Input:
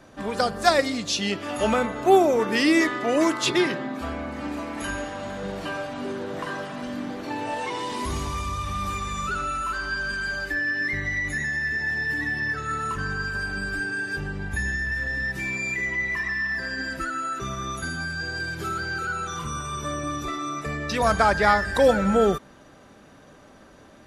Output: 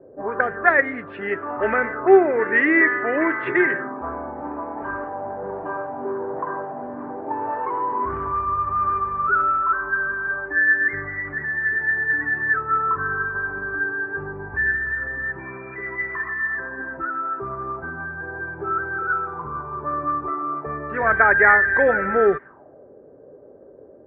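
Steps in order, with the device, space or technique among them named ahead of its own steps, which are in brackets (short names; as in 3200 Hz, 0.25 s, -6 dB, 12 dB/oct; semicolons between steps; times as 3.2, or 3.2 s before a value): envelope filter bass rig (envelope low-pass 480–1900 Hz up, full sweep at -21.5 dBFS; speaker cabinet 73–2300 Hz, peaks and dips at 200 Hz -7 dB, 400 Hz +9 dB, 1600 Hz +6 dB); gain -3 dB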